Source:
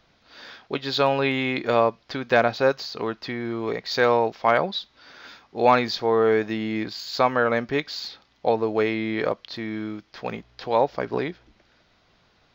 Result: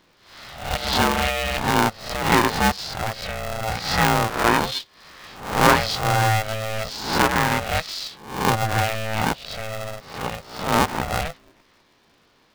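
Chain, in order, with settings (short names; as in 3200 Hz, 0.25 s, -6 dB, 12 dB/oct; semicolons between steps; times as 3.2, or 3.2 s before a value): spectral swells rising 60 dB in 0.59 s; polarity switched at an audio rate 330 Hz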